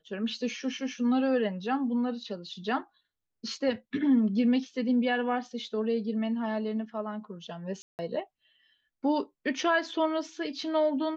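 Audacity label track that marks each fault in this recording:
7.820000	7.990000	drop-out 169 ms

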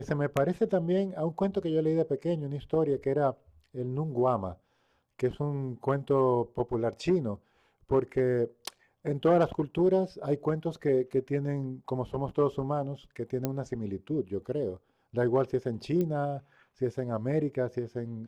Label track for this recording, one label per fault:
13.450000	13.450000	click −15 dBFS
16.010000	16.010000	click −20 dBFS

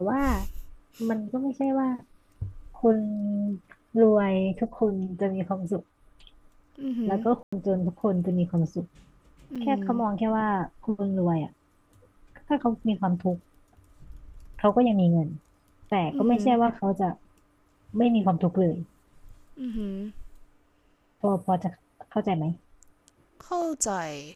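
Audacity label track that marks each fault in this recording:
7.430000	7.530000	drop-out 95 ms
9.550000	9.560000	drop-out 5.8 ms

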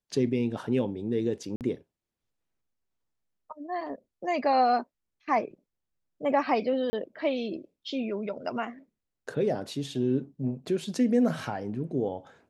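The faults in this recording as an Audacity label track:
1.560000	1.610000	drop-out 48 ms
6.900000	6.930000	drop-out 30 ms

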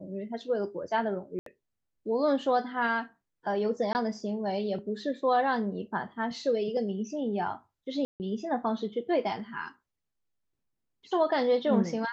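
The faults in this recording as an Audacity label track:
1.390000	1.460000	drop-out 73 ms
3.930000	3.950000	drop-out 19 ms
8.050000	8.200000	drop-out 149 ms

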